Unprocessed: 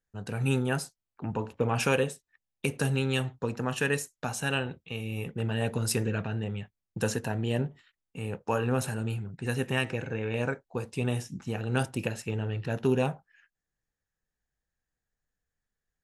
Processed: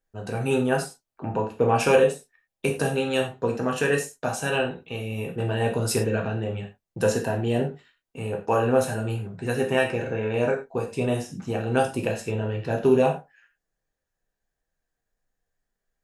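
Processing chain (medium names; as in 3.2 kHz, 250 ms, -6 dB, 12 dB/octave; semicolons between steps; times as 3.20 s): peaking EQ 540 Hz +7 dB 1.4 oct; gated-style reverb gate 130 ms falling, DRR 0.5 dB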